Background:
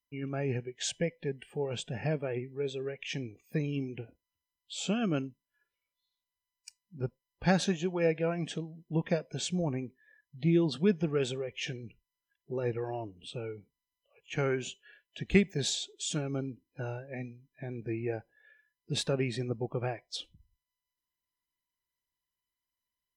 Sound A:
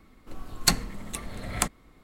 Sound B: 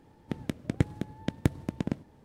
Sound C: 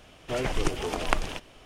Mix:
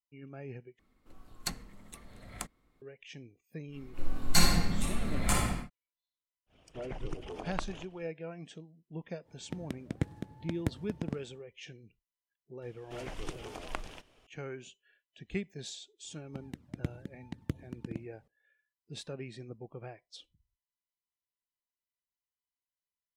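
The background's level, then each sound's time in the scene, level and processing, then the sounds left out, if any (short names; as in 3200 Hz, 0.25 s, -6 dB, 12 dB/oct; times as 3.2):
background -11.5 dB
0.79 replace with A -14.5 dB
3.67 add A -14 dB, fades 0.10 s + shoebox room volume 670 m³, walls mixed, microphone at 7.3 m
6.46 add C -11 dB, fades 0.10 s + formant sharpening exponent 1.5
9.21 add B -6.5 dB, fades 0.10 s
12.62 add C -13 dB
16.04 add B -9 dB + envelope flanger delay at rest 2.3 ms, full sweep at -25.5 dBFS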